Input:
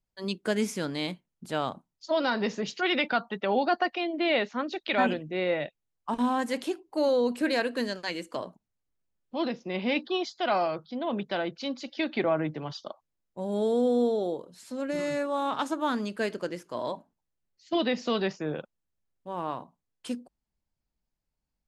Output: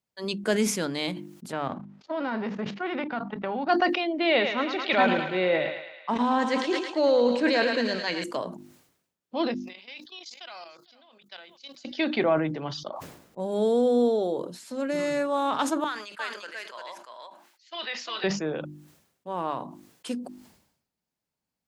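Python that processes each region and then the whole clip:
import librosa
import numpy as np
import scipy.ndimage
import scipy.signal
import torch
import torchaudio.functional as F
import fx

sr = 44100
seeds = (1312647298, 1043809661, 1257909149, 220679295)

y = fx.envelope_flatten(x, sr, power=0.6, at=(1.51, 3.68), fade=0.02)
y = fx.lowpass(y, sr, hz=1600.0, slope=12, at=(1.51, 3.68), fade=0.02)
y = fx.level_steps(y, sr, step_db=16, at=(1.51, 3.68), fade=0.02)
y = fx.chain(y, sr, fx.lowpass(hz=6300.0, slope=24),
    fx.echo_thinned(ms=109, feedback_pct=67, hz=570.0, wet_db=-7.5),
    fx.sustainer(db_per_s=74.0), at=(4.28, 8.24))
y = fx.chain(y, sr, fx.differentiator(),
    fx.echo_single(ms=455, db=-21.5),
    fx.level_steps(step_db=15), at=(9.54, 11.85))
y = fx.chain(y, sr, fx.high_shelf(hz=2000.0, db=-10.5),
    fx.sustainer(db_per_s=23.0), at=(12.89, 13.4))
y = fx.chain(y, sr, fx.highpass(hz=1400.0, slope=12),
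    fx.high_shelf(hz=4400.0, db=-9.5),
    fx.echo_single(ms=348, db=-3.5), at=(15.84, 18.24))
y = scipy.signal.sosfilt(scipy.signal.butter(2, 130.0, 'highpass', fs=sr, output='sos'), y)
y = fx.hum_notches(y, sr, base_hz=50, count=7)
y = fx.sustainer(y, sr, db_per_s=77.0)
y = y * librosa.db_to_amplitude(3.0)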